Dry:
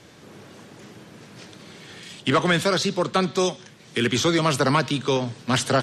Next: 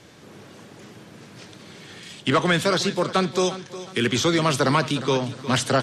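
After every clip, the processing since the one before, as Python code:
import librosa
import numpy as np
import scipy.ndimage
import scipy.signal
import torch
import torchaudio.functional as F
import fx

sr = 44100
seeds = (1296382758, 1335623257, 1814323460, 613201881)

y = fx.echo_feedback(x, sr, ms=360, feedback_pct=37, wet_db=-14.5)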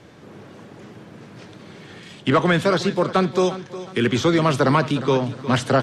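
y = fx.high_shelf(x, sr, hz=3000.0, db=-11.5)
y = F.gain(torch.from_numpy(y), 3.5).numpy()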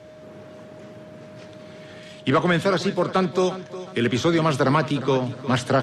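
y = x + 10.0 ** (-41.0 / 20.0) * np.sin(2.0 * np.pi * 620.0 * np.arange(len(x)) / sr)
y = F.gain(torch.from_numpy(y), -2.0).numpy()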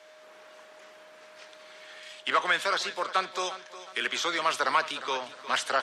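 y = scipy.signal.sosfilt(scipy.signal.butter(2, 1000.0, 'highpass', fs=sr, output='sos'), x)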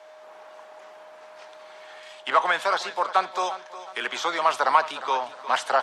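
y = fx.peak_eq(x, sr, hz=820.0, db=13.0, octaves=1.1)
y = F.gain(torch.from_numpy(y), -2.0).numpy()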